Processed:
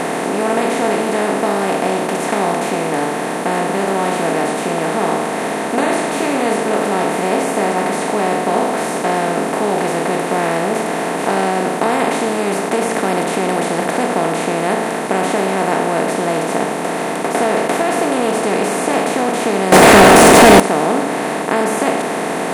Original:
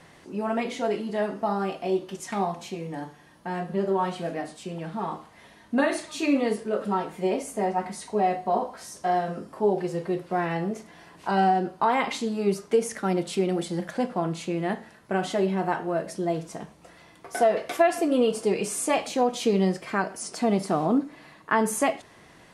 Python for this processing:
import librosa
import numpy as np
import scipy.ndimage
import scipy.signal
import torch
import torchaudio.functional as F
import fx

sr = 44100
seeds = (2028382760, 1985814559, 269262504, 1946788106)

y = fx.bin_compress(x, sr, power=0.2)
y = fx.leveller(y, sr, passes=5, at=(19.72, 20.6))
y = y * librosa.db_to_amplitude(-2.5)